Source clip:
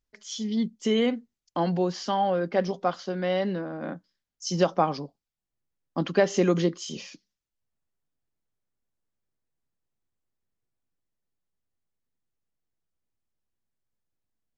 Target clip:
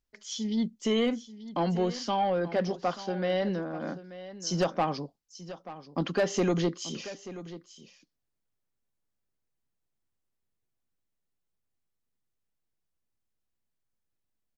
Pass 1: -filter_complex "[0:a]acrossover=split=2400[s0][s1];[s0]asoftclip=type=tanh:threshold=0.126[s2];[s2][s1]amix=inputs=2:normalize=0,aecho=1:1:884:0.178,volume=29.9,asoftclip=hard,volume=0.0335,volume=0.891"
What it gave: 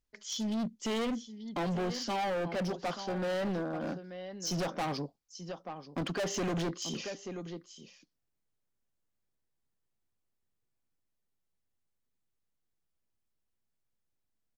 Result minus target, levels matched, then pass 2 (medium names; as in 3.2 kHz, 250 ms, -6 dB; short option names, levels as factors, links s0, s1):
overload inside the chain: distortion +28 dB
-filter_complex "[0:a]acrossover=split=2400[s0][s1];[s0]asoftclip=type=tanh:threshold=0.126[s2];[s2][s1]amix=inputs=2:normalize=0,aecho=1:1:884:0.178,volume=7.94,asoftclip=hard,volume=0.126,volume=0.891"